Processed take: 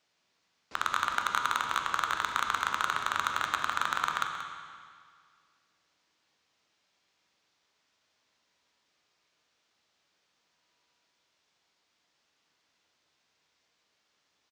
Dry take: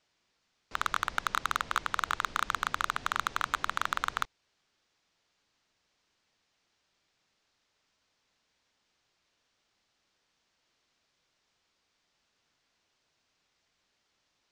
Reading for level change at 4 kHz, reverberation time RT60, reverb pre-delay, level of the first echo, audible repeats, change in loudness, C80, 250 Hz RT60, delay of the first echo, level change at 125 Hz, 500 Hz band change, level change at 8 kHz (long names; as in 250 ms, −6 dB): +1.5 dB, 2.0 s, 12 ms, −11.0 dB, 1, +1.5 dB, 4.5 dB, 2.0 s, 182 ms, −2.5 dB, +1.5 dB, +1.0 dB